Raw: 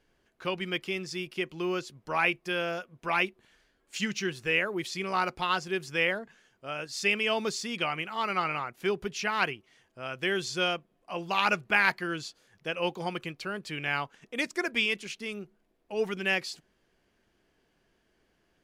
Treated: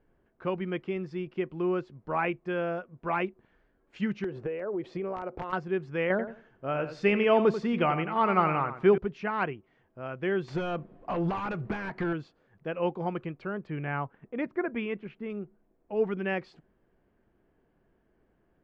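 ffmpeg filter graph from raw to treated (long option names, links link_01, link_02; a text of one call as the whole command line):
ffmpeg -i in.wav -filter_complex "[0:a]asettb=1/sr,asplit=3[link_01][link_02][link_03];[link_01]atrim=end=4.244[link_04];[link_02]atrim=start=4.24:end=5.53,asetpts=PTS-STARTPTS,afade=type=in:duration=0.004:curve=qsin,afade=type=out:start_time=1.286:duration=0.004:curve=qsin,equalizer=frequency=510:width_type=o:width=1.6:gain=12.5,acompressor=threshold=-31dB:ratio=12:attack=3.2:release=140:knee=1:detection=peak,aeval=exprs='(mod(17.8*val(0)+1,2)-1)/17.8':channel_layout=same[link_05];[link_03]atrim=start=5.526[link_06];[link_04][link_05]acrossfade=duration=0.004:curve1=hsin:curve2=qsin[link_07];[link_07][link_06]acrossfade=duration=0.004:curve1=qsin:curve2=hsin,asettb=1/sr,asplit=3[link_08][link_09][link_10];[link_08]atrim=end=6.104[link_11];[link_09]atrim=start=6.1:end=8.98,asetpts=PTS-STARTPTS,afade=type=in:duration=0.004:curve=qsin,afade=type=out:start_time=2.876:duration=0.004:curve=qsin,acontrast=46,asplit=2[link_12][link_13];[link_13]adelay=89,lowpass=frequency=5000:poles=1,volume=-10.5dB,asplit=2[link_14][link_15];[link_15]adelay=89,lowpass=frequency=5000:poles=1,volume=0.21,asplit=2[link_16][link_17];[link_17]adelay=89,lowpass=frequency=5000:poles=1,volume=0.21[link_18];[link_12][link_14][link_16][link_18]amix=inputs=4:normalize=0,atrim=end_sample=127008[link_19];[link_10]atrim=start=8.976[link_20];[link_11][link_19]acrossfade=duration=0.004:curve1=hsin:curve2=qsin[link_21];[link_21][link_20]acrossfade=duration=0.004:curve1=qsin:curve2=hsin,asettb=1/sr,asplit=3[link_22][link_23][link_24];[link_22]atrim=end=10.484[link_25];[link_23]atrim=start=10.48:end=12.13,asetpts=PTS-STARTPTS,afade=type=in:duration=0.004:curve=qsin,afade=type=out:start_time=1.646:duration=0.004:curve=qsin,highshelf=frequency=4700:gain=5,acompressor=threshold=-39dB:ratio=6:attack=3.2:release=140:knee=1:detection=peak,aeval=exprs='0.0447*sin(PI/2*3.55*val(0)/0.0447)':channel_layout=same[link_26];[link_24]atrim=start=12.126[link_27];[link_25][link_26]acrossfade=duration=0.004:curve1=hsin:curve2=qsin[link_28];[link_28][link_27]acrossfade=duration=0.004:curve1=qsin:curve2=hsin,asettb=1/sr,asplit=3[link_29][link_30][link_31];[link_29]atrim=end=13.674[link_32];[link_30]atrim=start=13.67:end=15.3,asetpts=PTS-STARTPTS,afade=type=in:duration=0.004:curve=qsin,afade=type=out:start_time=1.626:duration=0.004:curve=qsin,lowpass=2500,equalizer=frequency=120:width=2.3:gain=5[link_33];[link_31]atrim=start=15.296[link_34];[link_32][link_33]acrossfade=duration=0.004:curve1=hsin:curve2=qsin[link_35];[link_35][link_34]acrossfade=duration=0.004:curve1=qsin:curve2=hsin,lowpass=1400,lowshelf=frequency=470:gain=4.5" out.wav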